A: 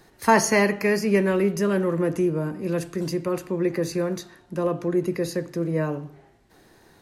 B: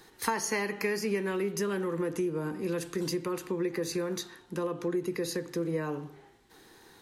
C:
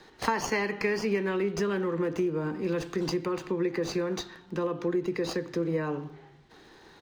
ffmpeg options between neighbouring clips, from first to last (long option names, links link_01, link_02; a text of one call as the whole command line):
ffmpeg -i in.wav -af "bass=frequency=250:gain=-7,treble=frequency=4000:gain=2,acompressor=threshold=-27dB:ratio=6,superequalizer=8b=0.398:13b=1.41" out.wav
ffmpeg -i in.wav -filter_complex "[0:a]acrossover=split=120|1200|6200[link_01][link_02][link_03][link_04];[link_01]aecho=1:1:350:0.501[link_05];[link_04]acrusher=samples=23:mix=1:aa=0.000001[link_06];[link_05][link_02][link_03][link_06]amix=inputs=4:normalize=0,volume=2.5dB" out.wav